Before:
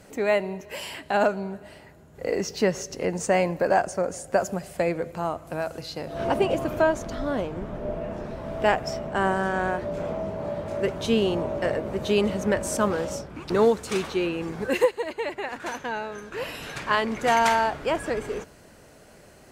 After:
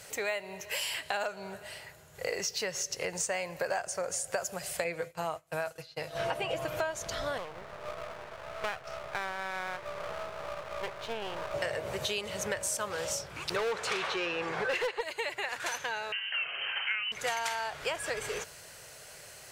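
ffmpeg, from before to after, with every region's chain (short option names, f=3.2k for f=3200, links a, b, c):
-filter_complex "[0:a]asettb=1/sr,asplit=3[a][b][c];[a]atrim=end=4.844[d];[b]atrim=start=4.84:end=6.79,asetpts=PTS-STARTPTS,afade=t=in:d=0.004:c=qsin,afade=t=out:st=1.946:d=0.004:c=qsin,acrossover=split=3600[e][f];[f]acompressor=threshold=-53dB:ratio=4:attack=1:release=60[g];[e][g]amix=inputs=2:normalize=0,agate=range=-33dB:threshold=-31dB:ratio=3:release=100:detection=peak,aecho=1:1:6.3:0.46,atrim=end_sample=85995[h];[c]atrim=start=6.786[i];[d][h]acrossfade=d=0.004:c1=hsin:c2=qsin[j];[j][i]acrossfade=d=0.004:c1=qsin:c2=hsin,asettb=1/sr,asplit=3[k][l][m];[k]atrim=end=7.384[n];[l]atrim=start=7.38:end=11.54,asetpts=PTS-STARTPTS,afade=t=in:d=0.004:c=qsin,afade=t=out:st=4.156:d=0.004:c=qsin,lowpass=1.6k,lowshelf=f=260:g=-10,aeval=exprs='max(val(0),0)':c=same[o];[m]atrim=start=11.536[p];[n][o]acrossfade=d=0.004:c1=hsin:c2=qsin[q];[q][p]acrossfade=d=0.004:c1=qsin:c2=hsin,asettb=1/sr,asplit=3[r][s][t];[r]atrim=end=13.564[u];[s]atrim=start=13.56:end=15.01,asetpts=PTS-STARTPTS,afade=t=in:d=0.004:c=qsin,afade=t=out:st=1.446:d=0.004:c=qsin,aemphasis=mode=reproduction:type=cd,asplit=2[v][w];[w]highpass=f=720:p=1,volume=22dB,asoftclip=type=tanh:threshold=-8.5dB[x];[v][x]amix=inputs=2:normalize=0,lowpass=f=1.3k:p=1,volume=-6dB,asoftclip=type=hard:threshold=-13dB[y];[t]atrim=start=15.006[z];[u][y]acrossfade=d=0.004:c1=hsin:c2=qsin[aa];[aa][z]acrossfade=d=0.004:c1=qsin:c2=hsin,asettb=1/sr,asplit=3[ab][ac][ad];[ab]atrim=end=16.124[ae];[ac]atrim=start=16.12:end=17.12,asetpts=PTS-STARTPTS,afade=t=in:d=0.004:c=qsin,afade=t=out:st=0.996:d=0.004:c=qsin,lowpass=f=2.7k:t=q:w=0.5098,lowpass=f=2.7k:t=q:w=0.6013,lowpass=f=2.7k:t=q:w=0.9,lowpass=f=2.7k:t=q:w=2.563,afreqshift=-3200,asplit=2[af][ag];[ag]adelay=49,volume=-13.5dB[ah];[af][ah]amix=inputs=2:normalize=0,atrim=end_sample=44100[ai];[ad]atrim=start=17.116[aj];[ae][ai]acrossfade=d=0.004:c1=hsin:c2=qsin[ak];[ak][aj]acrossfade=d=0.004:c1=qsin:c2=hsin,tiltshelf=f=1.1k:g=-9.5,acompressor=threshold=-31dB:ratio=6,equalizer=f=125:t=o:w=1:g=8,equalizer=f=250:t=o:w=1:g=-11,equalizer=f=500:t=o:w=1:g=5"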